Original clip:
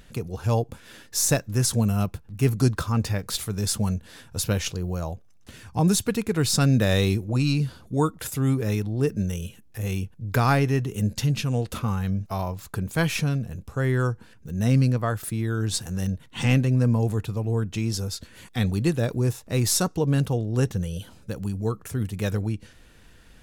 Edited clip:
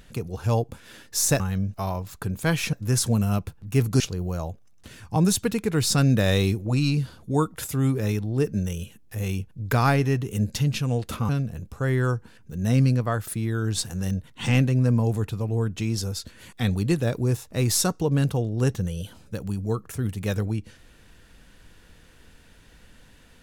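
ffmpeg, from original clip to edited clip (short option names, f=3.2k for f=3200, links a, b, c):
-filter_complex "[0:a]asplit=5[a][b][c][d][e];[a]atrim=end=1.402[f];[b]atrim=start=11.918:end=13.252[g];[c]atrim=start=1.398:end=2.672[h];[d]atrim=start=4.628:end=11.922[i];[e]atrim=start=13.248[j];[f][g]acrossfade=d=0.004:c1=hsin:c2=hsin[k];[k][h]acrossfade=d=0.004:c1=hsin:c2=hsin[l];[l][i]acrossfade=d=0.004:c1=hsin:c2=hsin[m];[m][j]acrossfade=d=0.004:c1=hsin:c2=hsin"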